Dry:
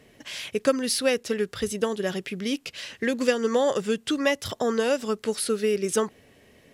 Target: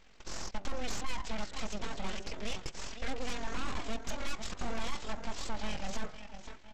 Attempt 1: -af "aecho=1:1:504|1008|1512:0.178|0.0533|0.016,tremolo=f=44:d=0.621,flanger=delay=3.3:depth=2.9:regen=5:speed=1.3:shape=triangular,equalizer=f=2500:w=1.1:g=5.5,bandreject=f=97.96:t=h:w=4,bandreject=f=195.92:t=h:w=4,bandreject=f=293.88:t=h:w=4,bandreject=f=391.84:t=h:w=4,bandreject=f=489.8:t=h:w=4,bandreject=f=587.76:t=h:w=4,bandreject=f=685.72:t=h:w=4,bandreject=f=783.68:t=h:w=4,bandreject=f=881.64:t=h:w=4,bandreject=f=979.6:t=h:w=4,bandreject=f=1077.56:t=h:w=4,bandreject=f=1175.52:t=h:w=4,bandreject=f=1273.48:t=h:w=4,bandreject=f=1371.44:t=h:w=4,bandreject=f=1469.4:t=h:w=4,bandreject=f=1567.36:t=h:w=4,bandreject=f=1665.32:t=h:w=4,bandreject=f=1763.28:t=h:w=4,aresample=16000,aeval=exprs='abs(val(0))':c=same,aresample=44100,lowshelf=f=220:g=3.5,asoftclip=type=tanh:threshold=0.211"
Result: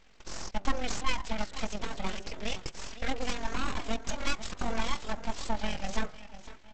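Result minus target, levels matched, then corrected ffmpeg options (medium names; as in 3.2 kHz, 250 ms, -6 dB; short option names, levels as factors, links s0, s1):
saturation: distortion -12 dB
-af "aecho=1:1:504|1008|1512:0.178|0.0533|0.016,tremolo=f=44:d=0.621,flanger=delay=3.3:depth=2.9:regen=5:speed=1.3:shape=triangular,equalizer=f=2500:w=1.1:g=5.5,bandreject=f=97.96:t=h:w=4,bandreject=f=195.92:t=h:w=4,bandreject=f=293.88:t=h:w=4,bandreject=f=391.84:t=h:w=4,bandreject=f=489.8:t=h:w=4,bandreject=f=587.76:t=h:w=4,bandreject=f=685.72:t=h:w=4,bandreject=f=783.68:t=h:w=4,bandreject=f=881.64:t=h:w=4,bandreject=f=979.6:t=h:w=4,bandreject=f=1077.56:t=h:w=4,bandreject=f=1175.52:t=h:w=4,bandreject=f=1273.48:t=h:w=4,bandreject=f=1371.44:t=h:w=4,bandreject=f=1469.4:t=h:w=4,bandreject=f=1567.36:t=h:w=4,bandreject=f=1665.32:t=h:w=4,bandreject=f=1763.28:t=h:w=4,aresample=16000,aeval=exprs='abs(val(0))':c=same,aresample=44100,lowshelf=f=220:g=3.5,asoftclip=type=tanh:threshold=0.0596"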